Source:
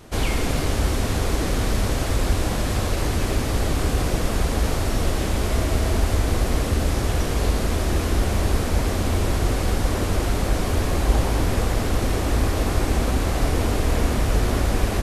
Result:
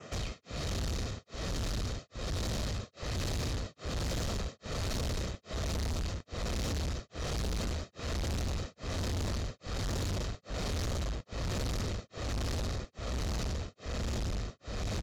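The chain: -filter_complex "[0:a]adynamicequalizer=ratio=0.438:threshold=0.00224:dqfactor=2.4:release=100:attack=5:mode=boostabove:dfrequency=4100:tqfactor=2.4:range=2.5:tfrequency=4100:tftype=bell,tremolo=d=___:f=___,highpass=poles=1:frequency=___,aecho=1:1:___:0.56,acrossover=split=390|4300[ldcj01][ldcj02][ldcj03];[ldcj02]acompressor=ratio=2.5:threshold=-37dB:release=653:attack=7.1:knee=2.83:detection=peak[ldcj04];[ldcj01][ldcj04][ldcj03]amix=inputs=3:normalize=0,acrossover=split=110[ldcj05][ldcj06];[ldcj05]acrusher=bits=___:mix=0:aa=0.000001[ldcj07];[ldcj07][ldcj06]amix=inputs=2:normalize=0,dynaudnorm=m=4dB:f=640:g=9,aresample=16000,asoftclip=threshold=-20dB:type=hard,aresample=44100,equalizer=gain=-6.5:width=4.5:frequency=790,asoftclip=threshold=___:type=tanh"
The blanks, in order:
1, 1.2, 72, 1.6, 6, -32dB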